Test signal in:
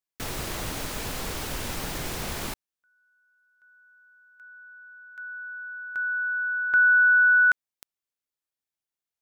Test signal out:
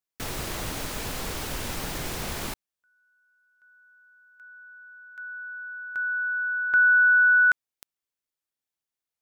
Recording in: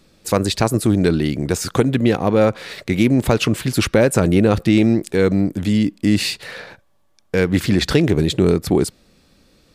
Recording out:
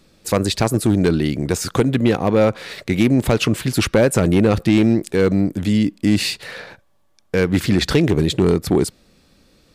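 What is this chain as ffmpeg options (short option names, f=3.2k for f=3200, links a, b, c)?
-af "volume=7dB,asoftclip=hard,volume=-7dB"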